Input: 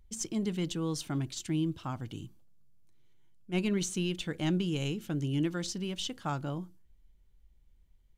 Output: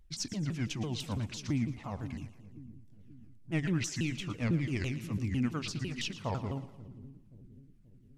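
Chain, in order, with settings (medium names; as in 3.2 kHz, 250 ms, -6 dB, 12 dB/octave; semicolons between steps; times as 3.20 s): sawtooth pitch modulation -8 st, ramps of 167 ms; two-band feedback delay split 370 Hz, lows 531 ms, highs 114 ms, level -13.5 dB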